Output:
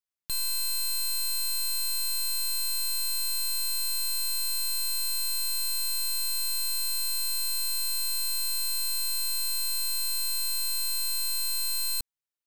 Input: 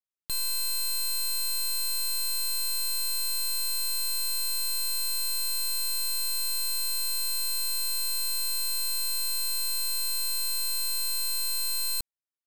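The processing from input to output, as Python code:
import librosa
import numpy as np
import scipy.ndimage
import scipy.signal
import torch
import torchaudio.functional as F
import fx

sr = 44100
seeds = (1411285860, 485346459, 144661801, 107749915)

y = fx.peak_eq(x, sr, hz=460.0, db=-3.0, octaves=2.2)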